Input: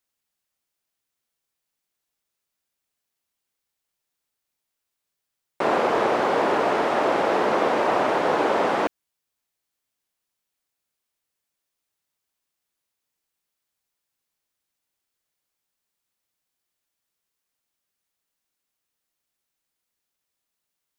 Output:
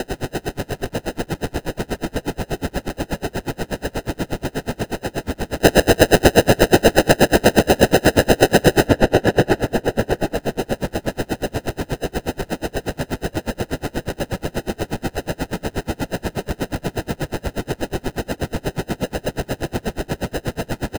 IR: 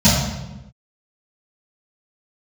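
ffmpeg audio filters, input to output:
-filter_complex "[0:a]aeval=exprs='val(0)+0.5*0.0299*sgn(val(0))':channel_layout=same,acrusher=samples=39:mix=1:aa=0.000001,asplit=2[link_01][link_02];[link_02]adelay=739,lowpass=frequency=2400:poles=1,volume=-6dB,asplit=2[link_03][link_04];[link_04]adelay=739,lowpass=frequency=2400:poles=1,volume=0.46,asplit=2[link_05][link_06];[link_06]adelay=739,lowpass=frequency=2400:poles=1,volume=0.46,asplit=2[link_07][link_08];[link_08]adelay=739,lowpass=frequency=2400:poles=1,volume=0.46,asplit=2[link_09][link_10];[link_10]adelay=739,lowpass=frequency=2400:poles=1,volume=0.46,asplit=2[link_11][link_12];[link_12]adelay=739,lowpass=frequency=2400:poles=1,volume=0.46[link_13];[link_01][link_03][link_05][link_07][link_09][link_11][link_13]amix=inputs=7:normalize=0,alimiter=level_in=17.5dB:limit=-1dB:release=50:level=0:latency=1,aeval=exprs='val(0)*pow(10,-33*(0.5-0.5*cos(2*PI*8.3*n/s))/20)':channel_layout=same"

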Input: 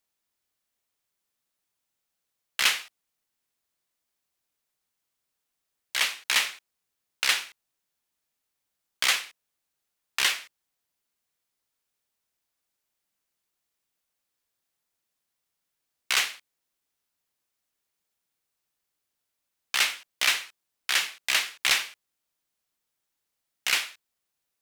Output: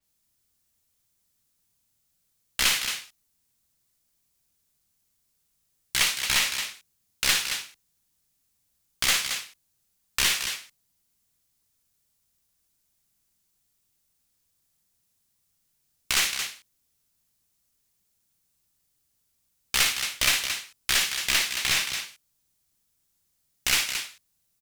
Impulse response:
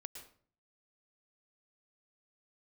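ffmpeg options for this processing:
-filter_complex "[0:a]bass=frequency=250:gain=15,treble=frequency=4000:gain=9,alimiter=limit=-7.5dB:level=0:latency=1:release=61,aecho=1:1:56|223:0.398|0.398,acrossover=split=110|3100[link_01][link_02][link_03];[link_03]aeval=exprs='clip(val(0),-1,0.0501)':channel_layout=same[link_04];[link_01][link_02][link_04]amix=inputs=3:normalize=0,adynamicequalizer=threshold=0.0178:dfrequency=6000:dqfactor=0.7:tfrequency=6000:tqfactor=0.7:attack=5:release=100:ratio=0.375:range=2:mode=cutabove:tftype=highshelf"

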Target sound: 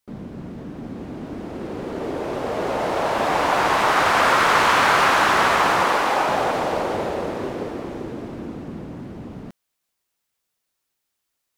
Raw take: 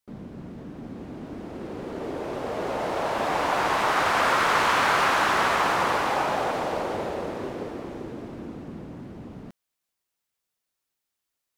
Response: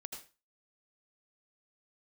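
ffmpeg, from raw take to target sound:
-filter_complex "[0:a]asettb=1/sr,asplit=3[link_01][link_02][link_03];[link_01]atrim=end=5.834[link_04];[link_02]atrim=start=5.83:end=6.29,asetpts=PTS-STARTPTS,afade=type=in:duration=0.004:curve=qsin,afade=type=out:start_time=0.456:duration=0.004:curve=qsin,equalizer=frequency=91:width_type=o:width=1.3:gain=-12.5[link_05];[link_03]atrim=start=6.286[link_06];[link_04][link_05]acrossfade=duration=0.004:curve1=hsin:curve2=qsin[link_07];[link_07][link_06]acrossfade=duration=0.004:curve1=qsin:curve2=hsin,volume=5dB"

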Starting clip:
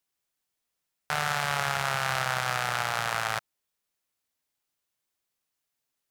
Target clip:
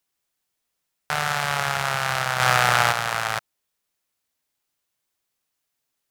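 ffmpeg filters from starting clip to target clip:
ffmpeg -i in.wav -filter_complex "[0:a]asplit=3[link_01][link_02][link_03];[link_01]afade=type=out:start_time=2.39:duration=0.02[link_04];[link_02]acontrast=83,afade=type=in:start_time=2.39:duration=0.02,afade=type=out:start_time=2.91:duration=0.02[link_05];[link_03]afade=type=in:start_time=2.91:duration=0.02[link_06];[link_04][link_05][link_06]amix=inputs=3:normalize=0,volume=4dB" out.wav

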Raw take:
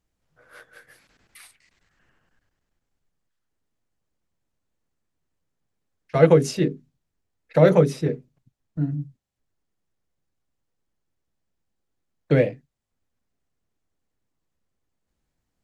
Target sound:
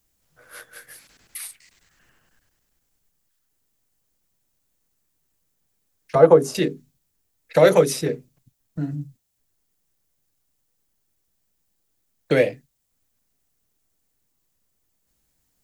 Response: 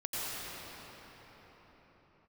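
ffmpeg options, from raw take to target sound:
-filter_complex "[0:a]asettb=1/sr,asplit=3[link_01][link_02][link_03];[link_01]atrim=end=6.154[link_04];[link_02]atrim=start=6.15:end=6.55,asetpts=PTS-STARTPTS,afade=type=in:duration=0.004:curve=qsin,afade=type=out:start_time=0.396:duration=0.004:curve=qsin,highshelf=frequency=1600:width_type=q:width=1.5:gain=-13.5[link_05];[link_03]atrim=start=6.546[link_06];[link_04][link_05]acrossfade=duration=0.004:curve1=hsin:curve2=qsin[link_07];[link_07][link_06]acrossfade=duration=0.004:curve1=qsin:curve2=hsin,acrossover=split=290|1300[link_08][link_09][link_10];[link_08]acompressor=threshold=-30dB:ratio=6[link_11];[link_11][link_09][link_10]amix=inputs=3:normalize=0,aemphasis=mode=production:type=75kf,volume=2.5dB"

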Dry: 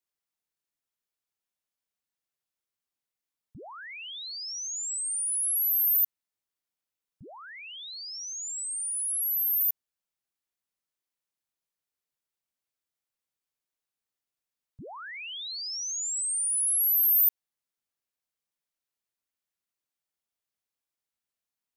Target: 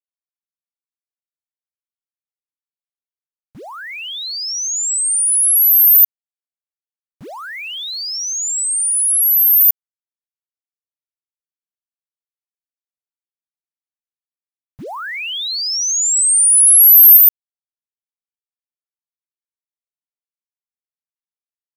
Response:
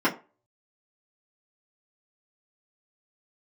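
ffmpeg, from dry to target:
-filter_complex "[0:a]lowshelf=frequency=180:gain=-7,acontrast=42,aeval=exprs='val(0)*gte(abs(val(0)),0.00355)':channel_layout=same,dynaudnorm=framelen=660:gausssize=11:maxgain=11.5dB,asettb=1/sr,asplit=3[link_01][link_02][link_03];[link_01]atrim=end=14.844[link_04];[link_02]atrim=start=14.84:end=17.17,asetpts=PTS-STARTPTS,afade=type=in:duration=0.004:curve=qsin,afade=type=out:start_time=2.326:duration=0.004:curve=qsin,adynamicequalizer=threshold=0.0316:dfrequency=7800:dqfactor=0.7:tfrequency=7800:tqfactor=0.7:attack=5:release=100:ratio=0.375:range=2:mode=boostabove:tftype=highshelf[link_05];[link_03]atrim=start=17.166[link_06];[link_04][link_05]acrossfade=duration=0.004:curve1=hsin:curve2=qsin[link_07];[link_07][link_06]acrossfade=duration=0.004:curve1=qsin:curve2=hsin,volume=-1dB"

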